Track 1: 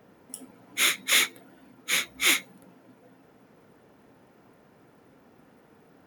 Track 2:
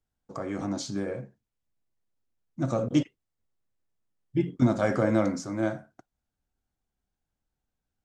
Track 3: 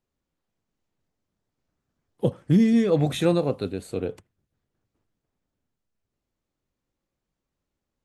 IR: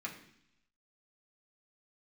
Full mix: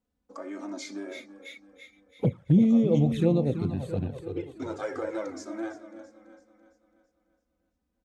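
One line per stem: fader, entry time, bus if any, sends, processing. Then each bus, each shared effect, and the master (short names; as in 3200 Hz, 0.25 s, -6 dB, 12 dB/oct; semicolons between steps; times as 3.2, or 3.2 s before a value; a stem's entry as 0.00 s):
-16.0 dB, 0.00 s, no send, echo send -5 dB, spectral expander 2.5:1; auto duck -19 dB, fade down 1.70 s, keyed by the third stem
-2.0 dB, 0.00 s, no send, echo send -14.5 dB, HPF 250 Hz 24 dB/oct
+1.5 dB, 0.00 s, no send, echo send -11 dB, tilt -2.5 dB/oct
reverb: off
echo: feedback echo 0.334 s, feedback 48%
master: HPF 60 Hz; envelope flanger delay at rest 4 ms, full sweep at -10.5 dBFS; compressor 1.5:1, threshold -32 dBFS, peak gain reduction 9 dB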